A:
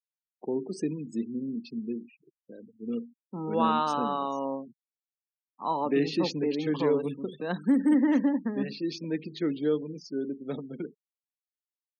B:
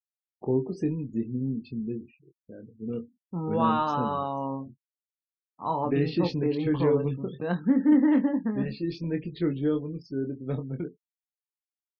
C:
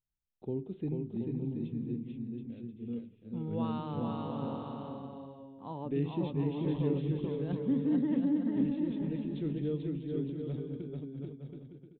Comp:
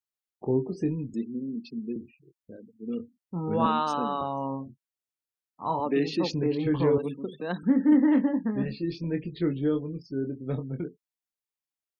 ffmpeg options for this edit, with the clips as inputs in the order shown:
-filter_complex "[0:a]asplit=5[s0][s1][s2][s3][s4];[1:a]asplit=6[s5][s6][s7][s8][s9][s10];[s5]atrim=end=1.142[s11];[s0]atrim=start=1.138:end=1.962[s12];[s6]atrim=start=1.958:end=2.58[s13];[s1]atrim=start=2.56:end=3[s14];[s7]atrim=start=2.98:end=3.662[s15];[s2]atrim=start=3.658:end=4.212[s16];[s8]atrim=start=4.208:end=5.802[s17];[s3]atrim=start=5.798:end=6.332[s18];[s9]atrim=start=6.328:end=6.982[s19];[s4]atrim=start=6.978:end=7.632[s20];[s10]atrim=start=7.628[s21];[s11][s12]acrossfade=d=0.004:c1=hsin:c2=hsin[s22];[s22][s13]acrossfade=d=0.004:c1=hsin:c2=hsin[s23];[s23][s14]acrossfade=d=0.02:c1=tri:c2=tri[s24];[s24][s15]acrossfade=d=0.02:c1=tri:c2=tri[s25];[s25][s16]acrossfade=d=0.004:c1=hsin:c2=hsin[s26];[s26][s17]acrossfade=d=0.004:c1=hsin:c2=hsin[s27];[s27][s18]acrossfade=d=0.004:c1=hsin:c2=hsin[s28];[s28][s19]acrossfade=d=0.004:c1=hsin:c2=hsin[s29];[s29][s20]acrossfade=d=0.004:c1=hsin:c2=hsin[s30];[s30][s21]acrossfade=d=0.004:c1=hsin:c2=hsin"

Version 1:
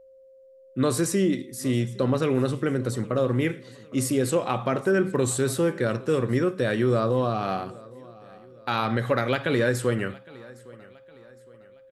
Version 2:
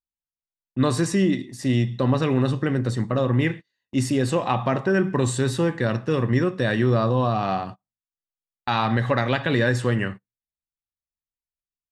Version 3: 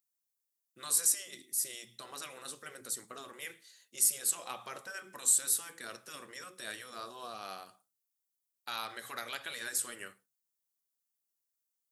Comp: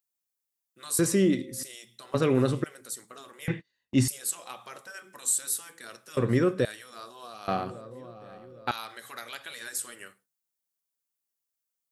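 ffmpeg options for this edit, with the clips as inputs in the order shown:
-filter_complex "[0:a]asplit=4[s0][s1][s2][s3];[2:a]asplit=6[s4][s5][s6][s7][s8][s9];[s4]atrim=end=0.992[s10];[s0]atrim=start=0.988:end=1.632[s11];[s5]atrim=start=1.628:end=2.142[s12];[s1]atrim=start=2.138:end=2.642[s13];[s6]atrim=start=2.638:end=3.482[s14];[1:a]atrim=start=3.478:end=4.082[s15];[s7]atrim=start=4.078:end=6.172[s16];[s2]atrim=start=6.168:end=6.652[s17];[s8]atrim=start=6.648:end=7.482[s18];[s3]atrim=start=7.478:end=8.712[s19];[s9]atrim=start=8.708[s20];[s10][s11]acrossfade=d=0.004:c1=hsin:c2=hsin[s21];[s21][s12]acrossfade=d=0.004:c1=hsin:c2=hsin[s22];[s22][s13]acrossfade=d=0.004:c1=hsin:c2=hsin[s23];[s23][s14]acrossfade=d=0.004:c1=hsin:c2=hsin[s24];[s24][s15]acrossfade=d=0.004:c1=hsin:c2=hsin[s25];[s25][s16]acrossfade=d=0.004:c1=hsin:c2=hsin[s26];[s26][s17]acrossfade=d=0.004:c1=hsin:c2=hsin[s27];[s27][s18]acrossfade=d=0.004:c1=hsin:c2=hsin[s28];[s28][s19]acrossfade=d=0.004:c1=hsin:c2=hsin[s29];[s29][s20]acrossfade=d=0.004:c1=hsin:c2=hsin"

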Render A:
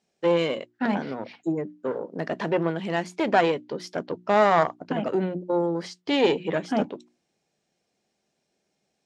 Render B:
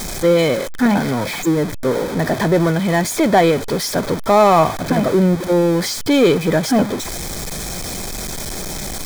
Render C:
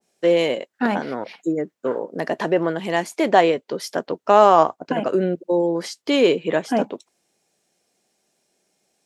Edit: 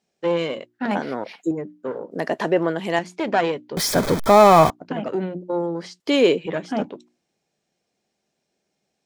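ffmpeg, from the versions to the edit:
-filter_complex "[2:a]asplit=3[s0][s1][s2];[0:a]asplit=5[s3][s4][s5][s6][s7];[s3]atrim=end=0.912[s8];[s0]atrim=start=0.908:end=1.512[s9];[s4]atrim=start=1.508:end=2.112[s10];[s1]atrim=start=2.108:end=2.992[s11];[s5]atrim=start=2.988:end=3.772[s12];[1:a]atrim=start=3.768:end=4.702[s13];[s6]atrim=start=4.698:end=6.002[s14];[s2]atrim=start=5.998:end=6.462[s15];[s7]atrim=start=6.458[s16];[s8][s9]acrossfade=d=0.004:c1=hsin:c2=hsin[s17];[s17][s10]acrossfade=d=0.004:c1=hsin:c2=hsin[s18];[s18][s11]acrossfade=d=0.004:c1=hsin:c2=hsin[s19];[s19][s12]acrossfade=d=0.004:c1=hsin:c2=hsin[s20];[s20][s13]acrossfade=d=0.004:c1=hsin:c2=hsin[s21];[s21][s14]acrossfade=d=0.004:c1=hsin:c2=hsin[s22];[s22][s15]acrossfade=d=0.004:c1=hsin:c2=hsin[s23];[s23][s16]acrossfade=d=0.004:c1=hsin:c2=hsin"

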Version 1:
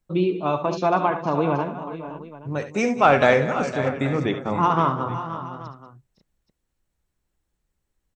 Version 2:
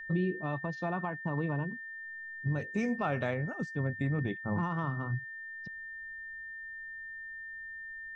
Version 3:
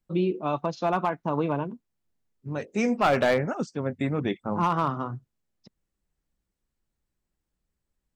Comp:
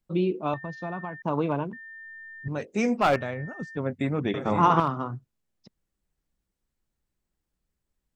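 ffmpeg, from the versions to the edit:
-filter_complex "[1:a]asplit=3[s0][s1][s2];[2:a]asplit=5[s3][s4][s5][s6][s7];[s3]atrim=end=0.542[s8];[s0]atrim=start=0.538:end=1.222[s9];[s4]atrim=start=1.218:end=1.732[s10];[s1]atrim=start=1.728:end=2.482[s11];[s5]atrim=start=2.478:end=3.162[s12];[s2]atrim=start=3.158:end=3.772[s13];[s6]atrim=start=3.768:end=4.342[s14];[0:a]atrim=start=4.338:end=4.802[s15];[s7]atrim=start=4.798[s16];[s8][s9]acrossfade=d=0.004:c1=hsin:c2=hsin[s17];[s17][s10]acrossfade=d=0.004:c1=hsin:c2=hsin[s18];[s18][s11]acrossfade=d=0.004:c1=hsin:c2=hsin[s19];[s19][s12]acrossfade=d=0.004:c1=hsin:c2=hsin[s20];[s20][s13]acrossfade=d=0.004:c1=hsin:c2=hsin[s21];[s21][s14]acrossfade=d=0.004:c1=hsin:c2=hsin[s22];[s22][s15]acrossfade=d=0.004:c1=hsin:c2=hsin[s23];[s23][s16]acrossfade=d=0.004:c1=hsin:c2=hsin"

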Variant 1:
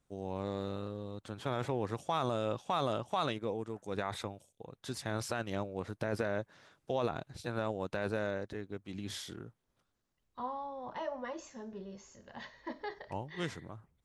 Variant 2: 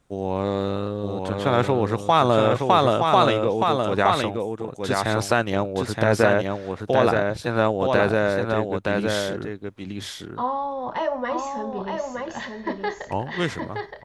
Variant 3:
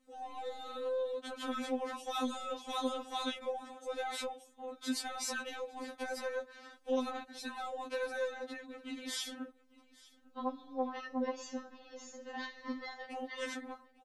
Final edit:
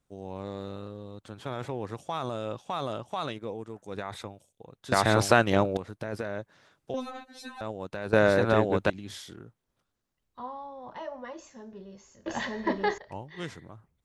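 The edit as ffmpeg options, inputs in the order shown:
-filter_complex "[1:a]asplit=3[s0][s1][s2];[0:a]asplit=5[s3][s4][s5][s6][s7];[s3]atrim=end=4.922[s8];[s0]atrim=start=4.918:end=5.772[s9];[s4]atrim=start=5.768:end=6.942[s10];[2:a]atrim=start=6.938:end=7.612[s11];[s5]atrim=start=7.608:end=8.132[s12];[s1]atrim=start=8.128:end=8.902[s13];[s6]atrim=start=8.898:end=12.262[s14];[s2]atrim=start=12.258:end=12.982[s15];[s7]atrim=start=12.978[s16];[s8][s9]acrossfade=d=0.004:c1=hsin:c2=hsin[s17];[s17][s10]acrossfade=d=0.004:c1=hsin:c2=hsin[s18];[s18][s11]acrossfade=d=0.004:c1=hsin:c2=hsin[s19];[s19][s12]acrossfade=d=0.004:c1=hsin:c2=hsin[s20];[s20][s13]acrossfade=d=0.004:c1=hsin:c2=hsin[s21];[s21][s14]acrossfade=d=0.004:c1=hsin:c2=hsin[s22];[s22][s15]acrossfade=d=0.004:c1=hsin:c2=hsin[s23];[s23][s16]acrossfade=d=0.004:c1=hsin:c2=hsin"

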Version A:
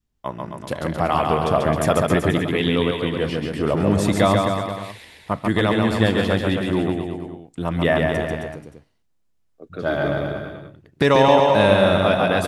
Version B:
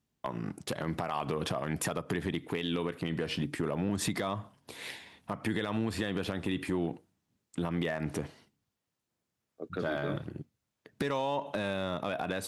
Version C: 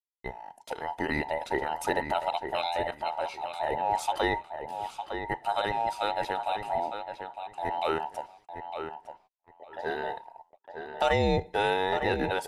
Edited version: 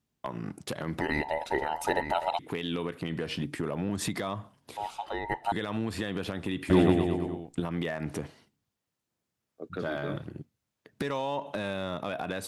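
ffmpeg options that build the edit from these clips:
-filter_complex "[2:a]asplit=2[s0][s1];[1:a]asplit=4[s2][s3][s4][s5];[s2]atrim=end=1.012[s6];[s0]atrim=start=1.008:end=2.392[s7];[s3]atrim=start=2.388:end=4.772[s8];[s1]atrim=start=4.768:end=5.522[s9];[s4]atrim=start=5.518:end=6.702[s10];[0:a]atrim=start=6.698:end=7.602[s11];[s5]atrim=start=7.598[s12];[s6][s7]acrossfade=d=0.004:c1=hsin:c2=hsin[s13];[s13][s8]acrossfade=d=0.004:c1=hsin:c2=hsin[s14];[s14][s9]acrossfade=d=0.004:c1=hsin:c2=hsin[s15];[s15][s10]acrossfade=d=0.004:c1=hsin:c2=hsin[s16];[s16][s11]acrossfade=d=0.004:c1=hsin:c2=hsin[s17];[s17][s12]acrossfade=d=0.004:c1=hsin:c2=hsin"

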